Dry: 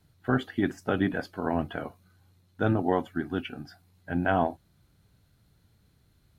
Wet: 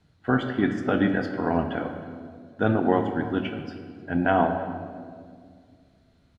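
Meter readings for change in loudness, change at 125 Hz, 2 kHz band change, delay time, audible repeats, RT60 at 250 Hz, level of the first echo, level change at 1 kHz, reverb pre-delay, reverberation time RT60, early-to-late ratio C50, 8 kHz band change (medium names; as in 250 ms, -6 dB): +3.5 dB, +2.5 dB, +4.0 dB, 313 ms, 1, 2.6 s, -22.0 dB, +4.5 dB, 4 ms, 2.1 s, 7.5 dB, no reading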